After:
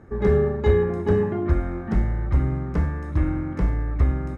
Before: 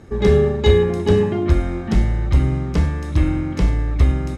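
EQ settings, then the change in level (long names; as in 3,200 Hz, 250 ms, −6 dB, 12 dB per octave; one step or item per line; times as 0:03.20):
high shelf with overshoot 2,300 Hz −11 dB, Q 1.5
−5.0 dB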